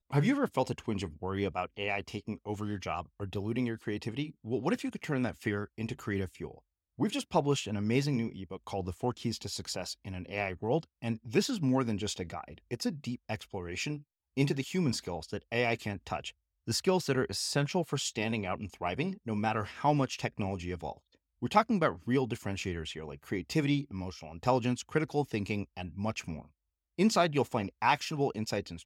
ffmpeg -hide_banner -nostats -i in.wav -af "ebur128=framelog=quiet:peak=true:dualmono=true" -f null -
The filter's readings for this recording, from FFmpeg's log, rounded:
Integrated loudness:
  I:         -30.1 LUFS
  Threshold: -40.3 LUFS
Loudness range:
  LRA:         3.6 LU
  Threshold: -50.6 LUFS
  LRA low:   -32.6 LUFS
  LRA high:  -29.0 LUFS
True peak:
  Peak:      -11.8 dBFS